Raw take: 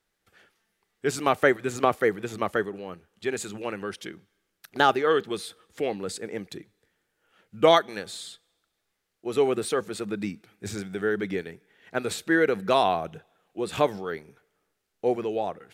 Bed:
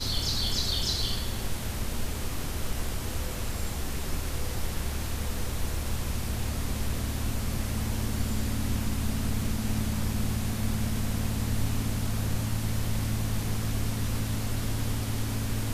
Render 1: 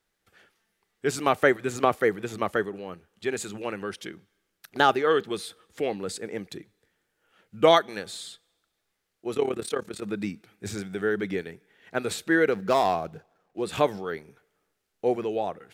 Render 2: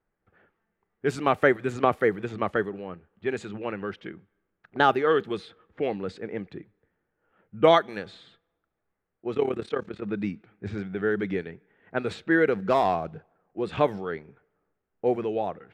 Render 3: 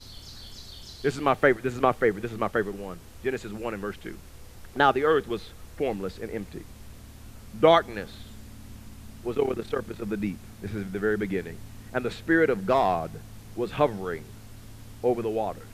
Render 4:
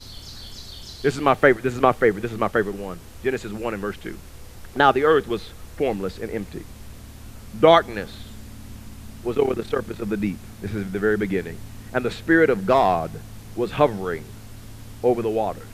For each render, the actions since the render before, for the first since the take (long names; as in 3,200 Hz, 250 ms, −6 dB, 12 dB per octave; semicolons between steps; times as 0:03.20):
0:09.34–0:10.03: amplitude modulation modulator 35 Hz, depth 70%; 0:12.52–0:13.62: running median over 15 samples
low-pass that shuts in the quiet parts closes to 1,400 Hz, open at −21.5 dBFS; bass and treble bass +3 dB, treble −11 dB
mix in bed −15.5 dB
level +5 dB; brickwall limiter −2 dBFS, peak gain reduction 2 dB